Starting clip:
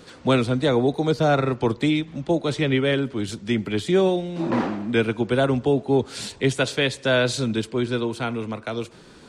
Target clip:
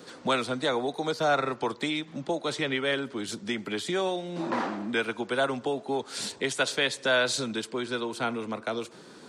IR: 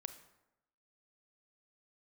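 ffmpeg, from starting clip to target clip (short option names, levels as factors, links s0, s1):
-filter_complex "[0:a]highpass=190,equalizer=f=2600:t=o:w=0.81:g=-4,acrossover=split=690|2400[s0][s1][s2];[s0]acompressor=threshold=0.0282:ratio=6[s3];[s3][s1][s2]amix=inputs=3:normalize=0"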